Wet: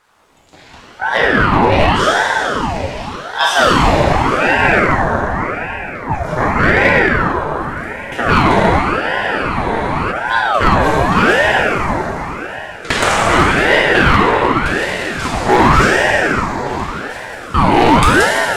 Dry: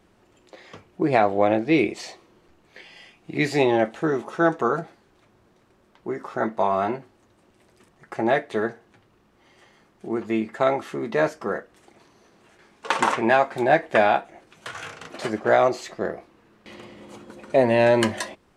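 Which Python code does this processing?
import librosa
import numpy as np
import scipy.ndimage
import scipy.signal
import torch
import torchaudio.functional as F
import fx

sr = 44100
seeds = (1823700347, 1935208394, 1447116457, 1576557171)

y = fx.high_shelf(x, sr, hz=3700.0, db=7.0)
y = fx.rev_plate(y, sr, seeds[0], rt60_s=4.2, hf_ratio=0.7, predelay_ms=0, drr_db=-7.0)
y = fx.rider(y, sr, range_db=4, speed_s=2.0)
y = np.clip(y, -10.0 ** (-7.5 / 20.0), 10.0 ** (-7.5 / 20.0))
y = fx.spec_freeze(y, sr, seeds[1], at_s=9.04, hold_s=1.08)
y = fx.ring_lfo(y, sr, carrier_hz=740.0, swing_pct=70, hz=0.87)
y = y * 10.0 ** (5.5 / 20.0)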